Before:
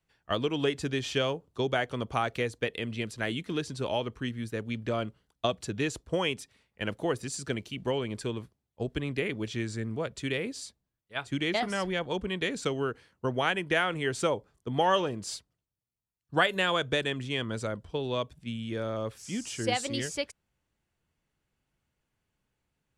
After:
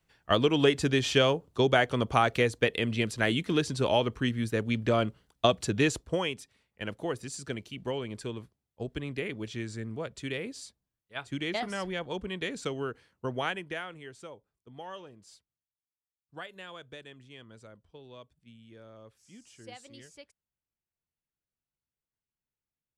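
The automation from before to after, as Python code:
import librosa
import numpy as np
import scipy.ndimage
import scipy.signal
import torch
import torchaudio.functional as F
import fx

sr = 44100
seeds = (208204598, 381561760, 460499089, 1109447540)

y = fx.gain(x, sr, db=fx.line((5.89, 5.0), (6.32, -3.5), (13.45, -3.5), (13.74, -10.0), (14.2, -18.0)))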